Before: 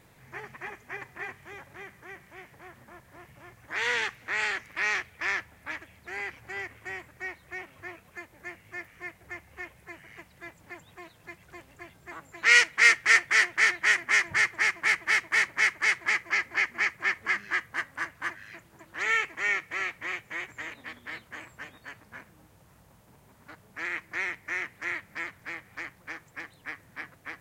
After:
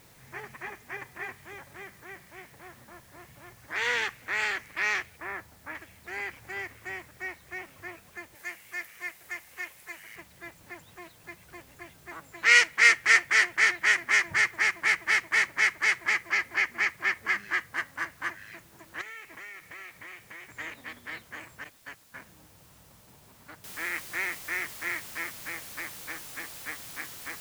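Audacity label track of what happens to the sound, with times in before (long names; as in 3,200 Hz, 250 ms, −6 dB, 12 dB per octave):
5.160000	5.740000	low-pass filter 1,000 Hz → 1,700 Hz
8.350000	10.160000	spectral tilt +3.5 dB per octave
19.010000	20.490000	downward compressor 8 to 1, threshold −41 dBFS
21.640000	22.160000	noise gate −48 dBFS, range −14 dB
23.640000	23.640000	noise floor change −60 dB −44 dB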